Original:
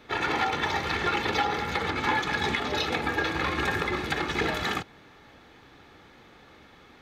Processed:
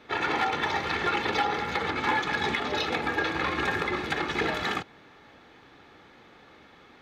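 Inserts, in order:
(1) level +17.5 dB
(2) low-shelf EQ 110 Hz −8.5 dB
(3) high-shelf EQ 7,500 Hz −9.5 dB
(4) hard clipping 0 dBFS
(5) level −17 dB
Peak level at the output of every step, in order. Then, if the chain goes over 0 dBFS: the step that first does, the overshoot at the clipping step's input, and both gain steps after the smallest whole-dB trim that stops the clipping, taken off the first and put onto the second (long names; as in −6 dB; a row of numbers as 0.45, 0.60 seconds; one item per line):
+6.0, +5.5, +5.0, 0.0, −17.0 dBFS
step 1, 5.0 dB
step 1 +12.5 dB, step 5 −12 dB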